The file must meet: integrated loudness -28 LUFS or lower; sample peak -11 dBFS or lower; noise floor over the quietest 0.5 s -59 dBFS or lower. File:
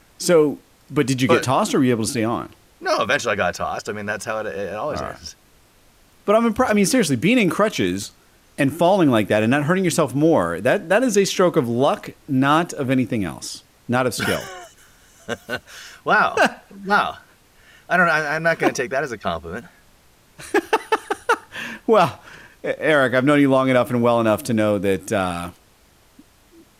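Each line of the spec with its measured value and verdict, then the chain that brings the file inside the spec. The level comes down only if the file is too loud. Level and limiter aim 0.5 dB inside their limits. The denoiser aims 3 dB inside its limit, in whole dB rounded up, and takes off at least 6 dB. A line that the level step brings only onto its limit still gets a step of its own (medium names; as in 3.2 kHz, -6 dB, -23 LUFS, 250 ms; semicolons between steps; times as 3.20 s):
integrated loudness -19.5 LUFS: fail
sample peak -4.5 dBFS: fail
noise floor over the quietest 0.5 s -54 dBFS: fail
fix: trim -9 dB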